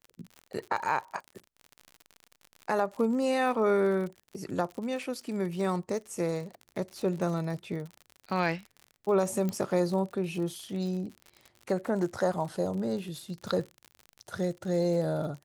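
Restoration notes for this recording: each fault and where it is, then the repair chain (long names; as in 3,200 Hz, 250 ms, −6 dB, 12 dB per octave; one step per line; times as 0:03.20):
surface crackle 59 per second −37 dBFS
0:09.49: click −19 dBFS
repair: click removal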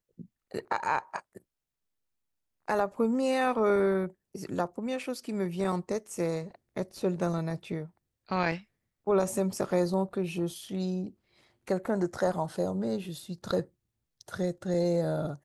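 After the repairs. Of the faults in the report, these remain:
none of them is left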